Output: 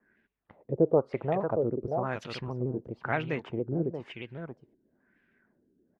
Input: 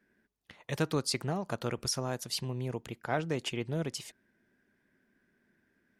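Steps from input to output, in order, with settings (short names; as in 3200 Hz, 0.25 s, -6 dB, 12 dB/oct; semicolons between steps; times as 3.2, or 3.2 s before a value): 0.72–1.4 EQ curve 280 Hz 0 dB, 560 Hz +11 dB, 2800 Hz -18 dB; echo 0.632 s -7.5 dB; LFO low-pass sine 1 Hz 340–2800 Hz; shaped vibrato saw down 6.4 Hz, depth 100 cents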